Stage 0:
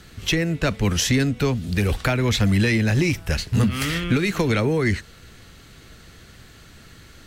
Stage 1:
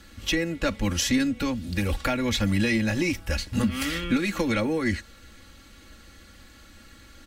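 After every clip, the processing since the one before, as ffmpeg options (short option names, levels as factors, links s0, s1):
-af "aecho=1:1:3.6:0.79,volume=0.531"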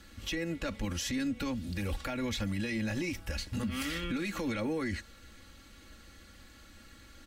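-af "alimiter=limit=0.0841:level=0:latency=1:release=68,volume=0.596"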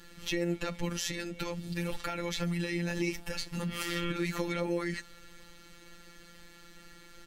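-af "afftfilt=real='hypot(re,im)*cos(PI*b)':imag='0':win_size=1024:overlap=0.75,volume=1.78"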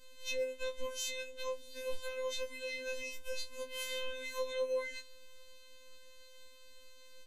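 -af "afftfilt=real='re*3.46*eq(mod(b,12),0)':imag='im*3.46*eq(mod(b,12),0)':win_size=2048:overlap=0.75,volume=0.473"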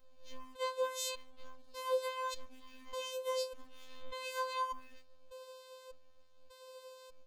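-af "afftfilt=real='real(if(between(b,1,1008),(2*floor((b-1)/24)+1)*24-b,b),0)':imag='imag(if(between(b,1,1008),(2*floor((b-1)/24)+1)*24-b,b),0)*if(between(b,1,1008),-1,1)':win_size=2048:overlap=0.75,aeval=exprs='sgn(val(0))*max(abs(val(0))-0.00112,0)':c=same,afftfilt=real='re*gt(sin(2*PI*0.84*pts/sr)*(1-2*mod(floor(b*sr/1024/260),2)),0)':imag='im*gt(sin(2*PI*0.84*pts/sr)*(1-2*mod(floor(b*sr/1024/260),2)),0)':win_size=1024:overlap=0.75,volume=1.12"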